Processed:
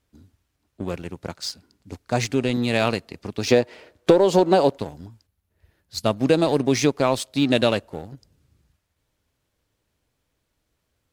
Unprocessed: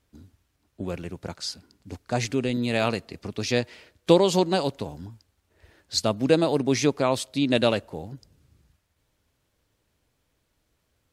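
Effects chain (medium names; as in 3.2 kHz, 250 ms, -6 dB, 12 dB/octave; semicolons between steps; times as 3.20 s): 3.47–4.78 s: peaking EQ 560 Hz +11 dB 2.8 oct; 5.26–6.06 s: time-frequency box 220–9800 Hz -8 dB; waveshaping leveller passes 1; compression 8:1, threshold -12 dBFS, peak gain reduction 12 dB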